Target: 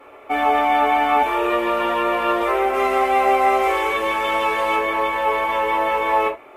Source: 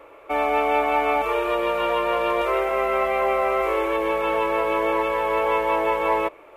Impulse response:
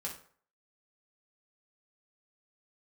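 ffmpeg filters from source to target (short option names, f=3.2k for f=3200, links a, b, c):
-filter_complex "[0:a]asettb=1/sr,asplit=3[a][b][c];[a]atrim=end=2.744[d];[b]atrim=start=2.74:end=4.76,asetpts=PTS-STARTPTS,afade=t=in:d=0.004:c=qsin,afade=t=out:st=2.016:d=0.004:c=qsin,equalizer=f=6.6k:w=0.58:g=7.5[e];[c]atrim=start=4.756[f];[d][e]acrossfade=d=0.004:c1=hsin:c2=qsin[g];[g][f]acrossfade=d=0.004:c1=qsin:c2=hsin[h];[1:a]atrim=start_sample=2205,atrim=end_sample=6174,asetrate=66150,aresample=44100[i];[h][i]afir=irnorm=-1:irlink=0,volume=8dB" -ar 48000 -c:a libopus -b:a 64k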